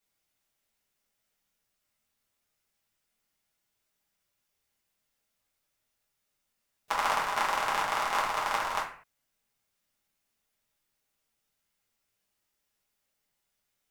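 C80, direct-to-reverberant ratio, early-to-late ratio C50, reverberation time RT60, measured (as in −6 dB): 10.0 dB, −6.0 dB, 6.5 dB, non-exponential decay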